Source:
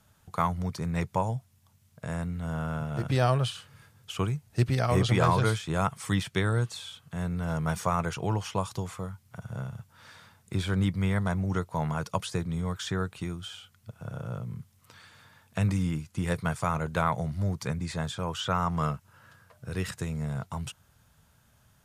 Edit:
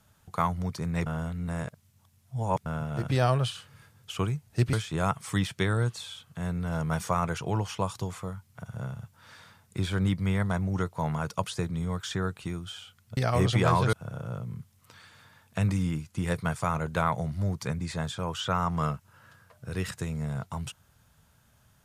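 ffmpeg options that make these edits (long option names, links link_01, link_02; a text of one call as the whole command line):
ffmpeg -i in.wav -filter_complex "[0:a]asplit=6[link_01][link_02][link_03][link_04][link_05][link_06];[link_01]atrim=end=1.062[link_07];[link_02]atrim=start=1.058:end=2.662,asetpts=PTS-STARTPTS,areverse[link_08];[link_03]atrim=start=2.658:end=4.732[link_09];[link_04]atrim=start=5.488:end=13.932[link_10];[link_05]atrim=start=4.728:end=5.492[link_11];[link_06]atrim=start=13.928[link_12];[link_07][link_08]acrossfade=duration=0.004:curve1=hsin:curve2=hsin[link_13];[link_13][link_09]acrossfade=duration=0.004:curve1=hsin:curve2=hsin[link_14];[link_14][link_10]acrossfade=duration=0.004:curve1=hsin:curve2=hsin[link_15];[link_15][link_11]acrossfade=duration=0.004:curve1=hsin:curve2=hsin[link_16];[link_16][link_12]acrossfade=duration=0.004:curve1=hsin:curve2=hsin" out.wav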